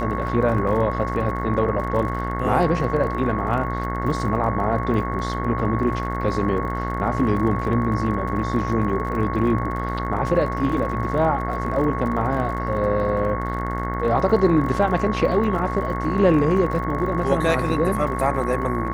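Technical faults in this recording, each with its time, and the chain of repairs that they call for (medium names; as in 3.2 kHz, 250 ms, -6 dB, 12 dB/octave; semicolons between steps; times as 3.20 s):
buzz 60 Hz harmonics 36 -27 dBFS
crackle 44 per s -31 dBFS
whine 1.1 kHz -28 dBFS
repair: de-click; band-stop 1.1 kHz, Q 30; de-hum 60 Hz, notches 36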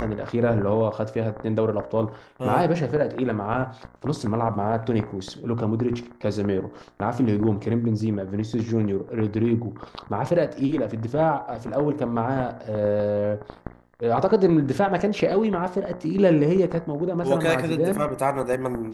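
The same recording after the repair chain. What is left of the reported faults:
nothing left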